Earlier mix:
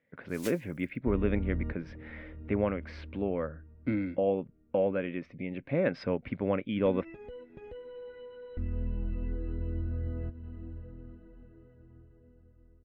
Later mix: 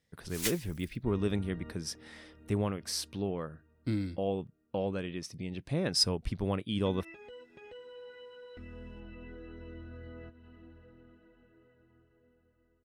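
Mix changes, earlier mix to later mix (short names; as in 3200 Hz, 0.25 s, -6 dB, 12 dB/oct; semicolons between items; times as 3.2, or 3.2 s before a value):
speech: remove speaker cabinet 120–2600 Hz, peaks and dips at 260 Hz +7 dB, 550 Hz +10 dB, 1500 Hz +5 dB, 2200 Hz +9 dB; first sound +11.0 dB; second sound: add tilt +4 dB/oct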